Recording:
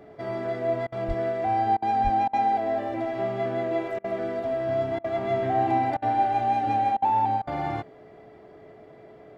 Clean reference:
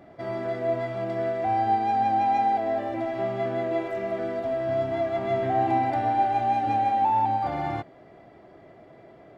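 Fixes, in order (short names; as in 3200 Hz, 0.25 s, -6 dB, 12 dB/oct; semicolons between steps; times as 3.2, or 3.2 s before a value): notch 430 Hz, Q 30; 1.07–1.19 HPF 140 Hz 24 dB/oct; 2.03–2.15 HPF 140 Hz 24 dB/oct; interpolate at 0.87/1.77/2.28/3.99/4.99/5.97/6.97/7.42, 51 ms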